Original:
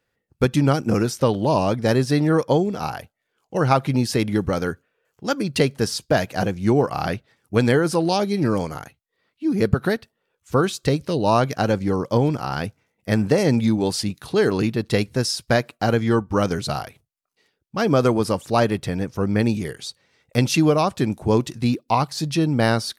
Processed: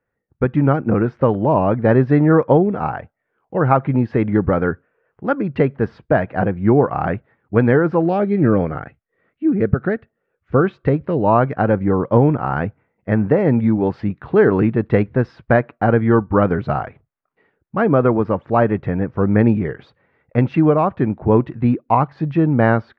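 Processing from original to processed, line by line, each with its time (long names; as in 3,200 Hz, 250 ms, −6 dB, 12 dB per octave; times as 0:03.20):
0:08.07–0:10.65: parametric band 960 Hz −10 dB 0.38 octaves
whole clip: low-pass filter 1,900 Hz 24 dB per octave; automatic gain control; level −1 dB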